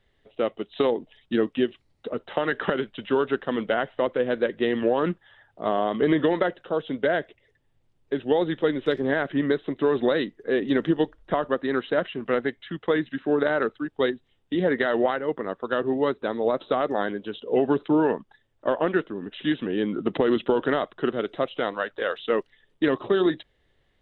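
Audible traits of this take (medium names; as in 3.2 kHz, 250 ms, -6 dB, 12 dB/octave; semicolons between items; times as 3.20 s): noise floor -68 dBFS; spectral tilt -4.5 dB/octave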